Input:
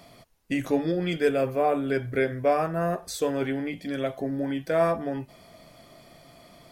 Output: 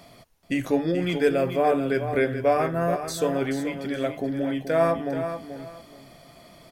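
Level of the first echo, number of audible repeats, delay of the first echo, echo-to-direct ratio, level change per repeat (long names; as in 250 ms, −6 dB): −9.0 dB, 2, 431 ms, −9.0 dB, −13.0 dB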